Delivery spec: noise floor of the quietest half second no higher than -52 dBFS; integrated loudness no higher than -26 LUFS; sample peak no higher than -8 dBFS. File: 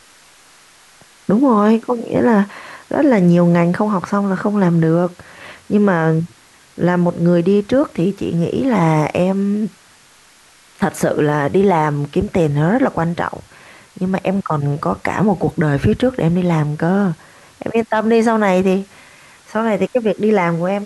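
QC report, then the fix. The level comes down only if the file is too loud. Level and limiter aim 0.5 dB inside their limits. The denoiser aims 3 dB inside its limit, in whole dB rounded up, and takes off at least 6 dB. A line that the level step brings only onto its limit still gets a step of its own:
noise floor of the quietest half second -48 dBFS: fail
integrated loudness -16.5 LUFS: fail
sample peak -5.0 dBFS: fail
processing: gain -10 dB

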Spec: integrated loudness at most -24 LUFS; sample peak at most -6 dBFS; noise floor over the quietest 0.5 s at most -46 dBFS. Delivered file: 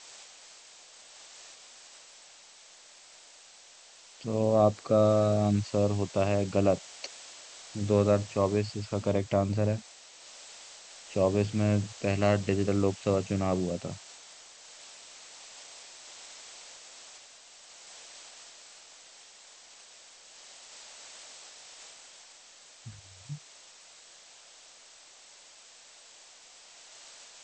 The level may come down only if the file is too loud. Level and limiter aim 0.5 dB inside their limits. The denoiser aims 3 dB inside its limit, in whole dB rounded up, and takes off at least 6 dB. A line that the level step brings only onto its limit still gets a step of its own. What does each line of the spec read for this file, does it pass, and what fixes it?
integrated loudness -28.0 LUFS: OK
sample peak -9.5 dBFS: OK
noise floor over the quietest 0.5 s -54 dBFS: OK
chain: none

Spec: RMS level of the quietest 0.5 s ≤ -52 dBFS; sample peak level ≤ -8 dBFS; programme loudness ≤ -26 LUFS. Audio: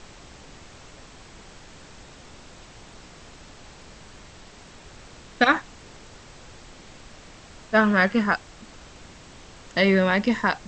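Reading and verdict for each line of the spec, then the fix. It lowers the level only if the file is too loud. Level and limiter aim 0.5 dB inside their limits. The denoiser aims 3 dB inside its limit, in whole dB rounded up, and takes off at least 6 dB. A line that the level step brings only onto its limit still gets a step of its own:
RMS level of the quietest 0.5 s -46 dBFS: fail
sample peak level -4.5 dBFS: fail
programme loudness -21.5 LUFS: fail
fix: denoiser 6 dB, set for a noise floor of -46 dBFS; gain -5 dB

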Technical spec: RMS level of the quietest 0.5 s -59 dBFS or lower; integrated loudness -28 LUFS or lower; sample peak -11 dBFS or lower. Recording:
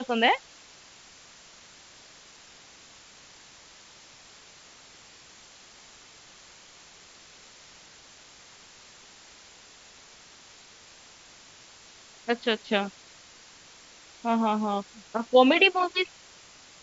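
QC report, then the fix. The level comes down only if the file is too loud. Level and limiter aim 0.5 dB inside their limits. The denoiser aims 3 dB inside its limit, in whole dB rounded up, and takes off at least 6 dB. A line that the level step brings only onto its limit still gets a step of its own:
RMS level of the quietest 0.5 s -52 dBFS: fail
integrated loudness -25.0 LUFS: fail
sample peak -5.5 dBFS: fail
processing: denoiser 7 dB, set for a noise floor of -52 dBFS; gain -3.5 dB; limiter -11.5 dBFS

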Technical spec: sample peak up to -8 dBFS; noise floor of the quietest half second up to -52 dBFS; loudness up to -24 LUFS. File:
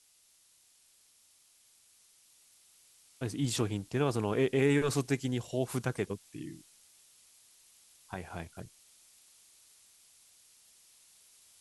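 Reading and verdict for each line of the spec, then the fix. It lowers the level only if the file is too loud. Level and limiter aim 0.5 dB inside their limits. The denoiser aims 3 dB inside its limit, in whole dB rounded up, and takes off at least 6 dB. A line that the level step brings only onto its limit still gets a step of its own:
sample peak -15.0 dBFS: OK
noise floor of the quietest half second -66 dBFS: OK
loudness -33.0 LUFS: OK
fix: none

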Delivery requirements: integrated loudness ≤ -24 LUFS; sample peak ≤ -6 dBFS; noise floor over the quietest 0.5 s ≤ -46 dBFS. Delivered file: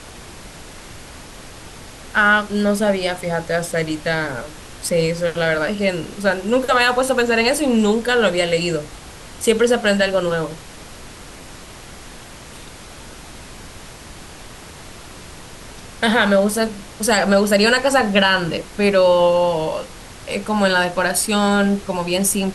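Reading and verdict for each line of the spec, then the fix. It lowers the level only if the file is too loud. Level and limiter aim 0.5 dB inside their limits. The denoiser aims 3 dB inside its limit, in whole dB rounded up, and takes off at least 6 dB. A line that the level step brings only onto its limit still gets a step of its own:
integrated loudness -18.0 LUFS: fail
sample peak -4.0 dBFS: fail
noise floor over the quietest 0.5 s -38 dBFS: fail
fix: denoiser 6 dB, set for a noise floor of -38 dBFS; gain -6.5 dB

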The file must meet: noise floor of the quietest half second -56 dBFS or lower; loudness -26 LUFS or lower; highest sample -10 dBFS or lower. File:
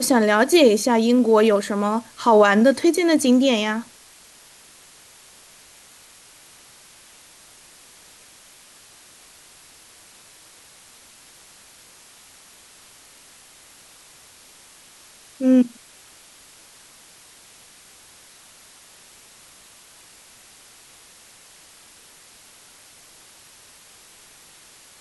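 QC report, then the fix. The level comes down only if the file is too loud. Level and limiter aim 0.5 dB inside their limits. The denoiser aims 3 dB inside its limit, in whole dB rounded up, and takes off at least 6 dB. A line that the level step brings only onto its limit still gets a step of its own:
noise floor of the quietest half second -49 dBFS: fail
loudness -17.5 LUFS: fail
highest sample -5.0 dBFS: fail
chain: gain -9 dB

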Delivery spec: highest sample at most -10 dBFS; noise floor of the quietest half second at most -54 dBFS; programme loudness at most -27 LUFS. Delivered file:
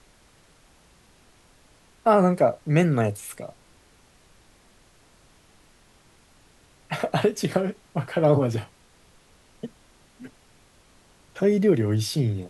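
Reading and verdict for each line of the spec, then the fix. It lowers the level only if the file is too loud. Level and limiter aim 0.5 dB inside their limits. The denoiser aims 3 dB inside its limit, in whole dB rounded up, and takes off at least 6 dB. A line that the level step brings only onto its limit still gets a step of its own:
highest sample -7.0 dBFS: fail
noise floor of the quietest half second -57 dBFS: OK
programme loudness -23.0 LUFS: fail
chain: gain -4.5 dB

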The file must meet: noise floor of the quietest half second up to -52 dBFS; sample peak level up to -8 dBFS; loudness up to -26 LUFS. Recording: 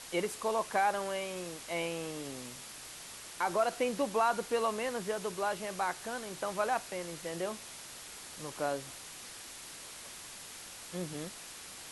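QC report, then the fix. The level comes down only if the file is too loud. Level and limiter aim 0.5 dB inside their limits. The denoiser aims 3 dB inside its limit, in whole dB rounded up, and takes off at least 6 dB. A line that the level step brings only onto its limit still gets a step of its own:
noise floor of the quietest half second -48 dBFS: fail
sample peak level -17.5 dBFS: OK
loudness -36.0 LUFS: OK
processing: denoiser 7 dB, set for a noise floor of -48 dBFS

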